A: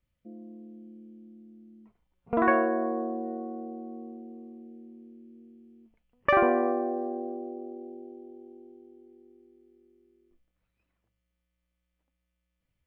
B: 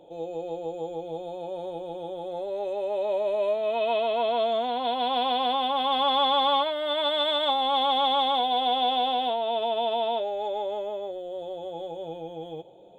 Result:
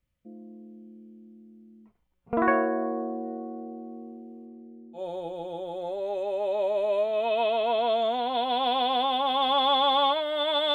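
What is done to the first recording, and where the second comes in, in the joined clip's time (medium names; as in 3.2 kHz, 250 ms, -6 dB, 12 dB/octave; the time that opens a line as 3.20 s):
A
4.45–5.01 s: low-pass 2.8 kHz -> 1 kHz
4.97 s: go over to B from 1.47 s, crossfade 0.08 s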